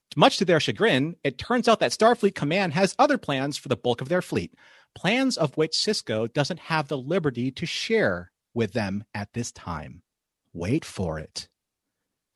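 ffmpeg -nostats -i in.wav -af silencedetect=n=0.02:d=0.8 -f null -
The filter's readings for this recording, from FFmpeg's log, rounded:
silence_start: 11.42
silence_end: 12.35 | silence_duration: 0.93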